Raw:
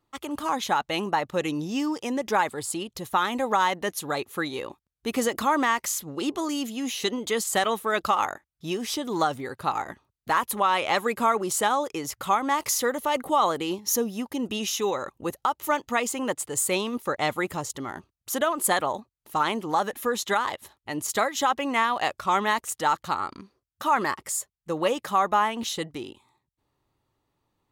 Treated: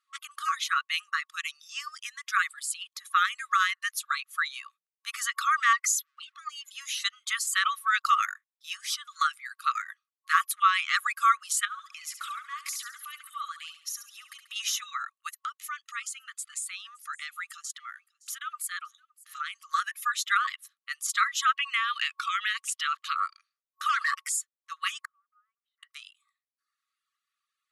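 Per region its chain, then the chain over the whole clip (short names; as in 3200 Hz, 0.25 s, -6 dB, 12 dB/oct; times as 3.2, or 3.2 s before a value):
5.73–6.71 spectral contrast raised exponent 1.6 + sample leveller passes 1
11.65–14.56 bell 6200 Hz -3 dB 0.41 oct + compressor 10:1, threshold -30 dBFS + feedback echo 69 ms, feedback 60%, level -5.5 dB
15.29–19.6 notch 1100 Hz, Q 13 + compressor 3:1, threshold -32 dBFS + echo 0.566 s -21 dB
21.55–23.16 bell 2900 Hz +11 dB 1 oct + compressor 5:1, threshold -24 dBFS
23.89–24.29 HPF 110 Hz 24 dB/oct + sample leveller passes 2 + compressor 3:1, threshold -23 dBFS
25.05–25.83 Bessel low-pass 630 Hz, order 4 + compressor 2.5:1, threshold -38 dBFS + differentiator
whole clip: FFT band-pass 1100–12000 Hz; reverb removal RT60 0.85 s; dynamic EQ 1400 Hz, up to +4 dB, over -39 dBFS, Q 0.79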